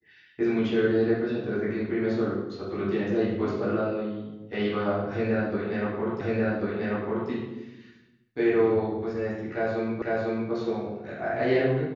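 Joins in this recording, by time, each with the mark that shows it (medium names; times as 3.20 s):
6.21 s: repeat of the last 1.09 s
10.02 s: repeat of the last 0.5 s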